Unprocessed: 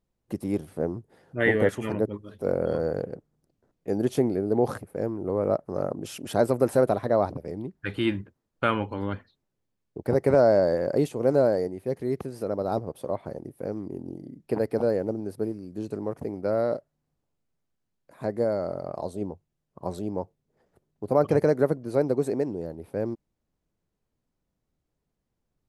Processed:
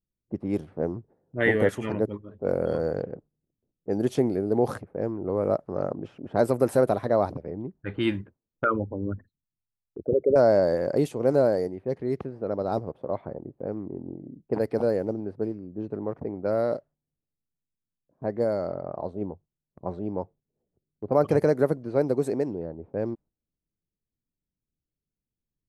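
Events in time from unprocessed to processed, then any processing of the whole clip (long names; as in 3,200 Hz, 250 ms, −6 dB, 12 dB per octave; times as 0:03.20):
0:08.64–0:10.36: spectral envelope exaggerated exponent 3
whole clip: low-pass that shuts in the quiet parts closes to 360 Hz, open at −21 dBFS; noise gate −50 dBFS, range −9 dB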